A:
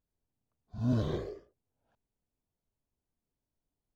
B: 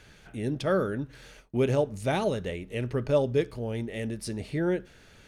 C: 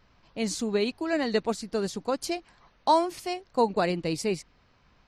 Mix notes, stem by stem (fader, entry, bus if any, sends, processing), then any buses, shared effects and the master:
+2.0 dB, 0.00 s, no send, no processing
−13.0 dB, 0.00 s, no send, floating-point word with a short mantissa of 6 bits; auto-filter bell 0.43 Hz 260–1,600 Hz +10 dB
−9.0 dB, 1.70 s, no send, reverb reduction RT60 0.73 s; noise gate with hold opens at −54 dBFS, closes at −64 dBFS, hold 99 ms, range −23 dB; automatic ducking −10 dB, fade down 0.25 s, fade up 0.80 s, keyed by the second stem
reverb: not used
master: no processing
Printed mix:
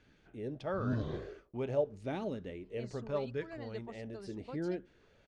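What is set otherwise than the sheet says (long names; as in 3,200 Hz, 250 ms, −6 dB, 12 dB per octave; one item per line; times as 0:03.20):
stem A +2.0 dB → −5.0 dB
stem C: entry 1.70 s → 2.40 s
master: extra high-frequency loss of the air 96 metres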